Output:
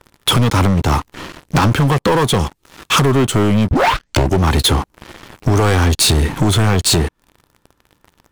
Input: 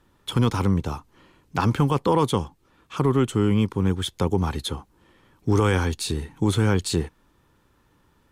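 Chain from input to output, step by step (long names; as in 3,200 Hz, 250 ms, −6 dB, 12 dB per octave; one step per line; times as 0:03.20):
0:02.39–0:03.06: high-shelf EQ 2,100 Hz +6 dB
0:03.71: tape start 0.67 s
downward compressor 16 to 1, threshold −30 dBFS, peak gain reduction 16 dB
leveller curve on the samples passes 5
level +8.5 dB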